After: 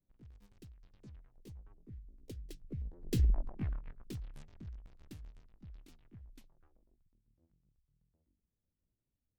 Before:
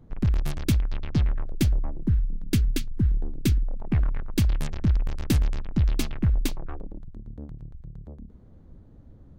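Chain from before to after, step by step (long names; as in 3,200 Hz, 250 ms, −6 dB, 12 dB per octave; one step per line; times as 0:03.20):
pitch shifter swept by a sawtooth +5 semitones, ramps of 638 ms
source passing by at 0:03.32, 32 m/s, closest 2.3 metres
pitch modulation by a square or saw wave saw down 3.4 Hz, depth 100 cents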